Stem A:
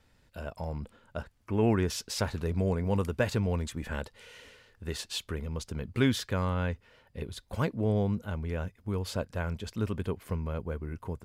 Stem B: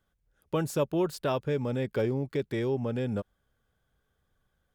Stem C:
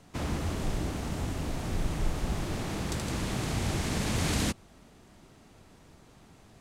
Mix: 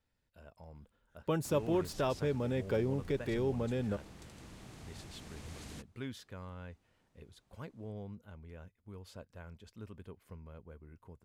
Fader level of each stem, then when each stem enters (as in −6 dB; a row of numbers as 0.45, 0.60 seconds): −17.0, −4.0, −20.0 decibels; 0.00, 0.75, 1.30 seconds